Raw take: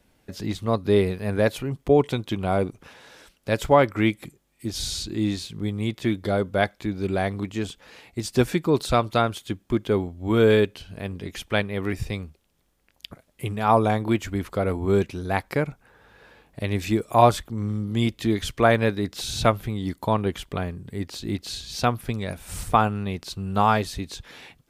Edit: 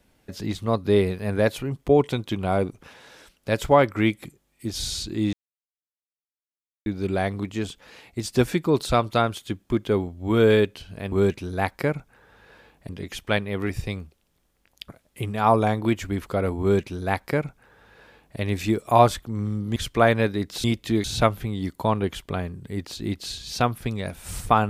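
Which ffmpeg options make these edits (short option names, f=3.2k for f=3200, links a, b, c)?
-filter_complex "[0:a]asplit=8[a][b][c][d][e][f][g][h];[a]atrim=end=5.33,asetpts=PTS-STARTPTS,afade=t=out:st=5.326:d=0.004:c=hsin[i];[b]atrim=start=5.33:end=6.86,asetpts=PTS-STARTPTS,volume=0[j];[c]atrim=start=6.86:end=11.122,asetpts=PTS-STARTPTS,afade=t=in:d=0.004:c=hsin[k];[d]atrim=start=14.838:end=16.612[l];[e]atrim=start=11.118:end=17.992[m];[f]atrim=start=18.388:end=19.272[n];[g]atrim=start=17.988:end=18.392[o];[h]atrim=start=19.268[p];[i][j][k]concat=n=3:v=0:a=1[q];[q][l]acrossfade=d=0.004:c1=hsin:c2=hsin[r];[r][m]acrossfade=d=0.004:c1=hsin:c2=hsin[s];[s][n]acrossfade=d=0.004:c1=hsin:c2=hsin[t];[t][o]acrossfade=d=0.004:c1=hsin:c2=hsin[u];[u][p]acrossfade=d=0.004:c1=hsin:c2=hsin"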